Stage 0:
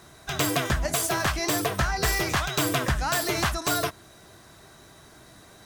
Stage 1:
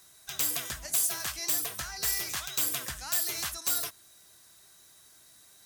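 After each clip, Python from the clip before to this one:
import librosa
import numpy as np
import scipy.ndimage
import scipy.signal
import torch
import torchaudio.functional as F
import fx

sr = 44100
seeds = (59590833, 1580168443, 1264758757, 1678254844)

y = F.preemphasis(torch.from_numpy(x), 0.9).numpy()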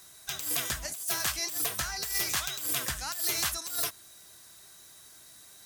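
y = fx.over_compress(x, sr, threshold_db=-32.0, ratio=-0.5)
y = y * librosa.db_to_amplitude(2.0)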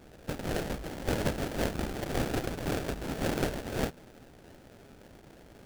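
y = fx.sample_hold(x, sr, seeds[0], rate_hz=1100.0, jitter_pct=20)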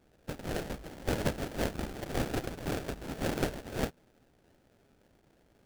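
y = fx.upward_expand(x, sr, threshold_db=-51.0, expansion=1.5)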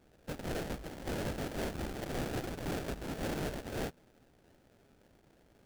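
y = np.clip(x, -10.0 ** (-34.0 / 20.0), 10.0 ** (-34.0 / 20.0))
y = y * librosa.db_to_amplitude(1.0)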